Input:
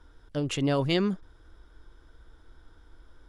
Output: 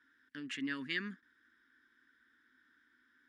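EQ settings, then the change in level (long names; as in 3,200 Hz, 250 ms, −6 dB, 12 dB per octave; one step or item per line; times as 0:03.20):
pair of resonant band-passes 660 Hz, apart 2.8 octaves
spectral tilt +4 dB per octave
+3.0 dB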